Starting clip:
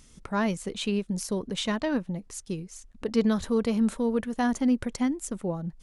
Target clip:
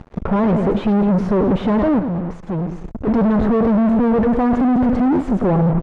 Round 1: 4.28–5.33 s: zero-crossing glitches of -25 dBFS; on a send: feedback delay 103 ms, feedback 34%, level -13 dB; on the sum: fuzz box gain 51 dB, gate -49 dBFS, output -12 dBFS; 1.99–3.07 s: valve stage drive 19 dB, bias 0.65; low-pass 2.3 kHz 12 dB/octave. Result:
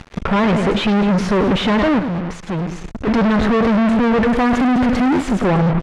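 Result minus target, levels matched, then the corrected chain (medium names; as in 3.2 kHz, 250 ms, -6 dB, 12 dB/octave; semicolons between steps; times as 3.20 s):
2 kHz band +10.0 dB
4.28–5.33 s: zero-crossing glitches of -25 dBFS; on a send: feedback delay 103 ms, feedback 34%, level -13 dB; on the sum: fuzz box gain 51 dB, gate -49 dBFS, output -12 dBFS; 1.99–3.07 s: valve stage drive 19 dB, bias 0.65; low-pass 900 Hz 12 dB/octave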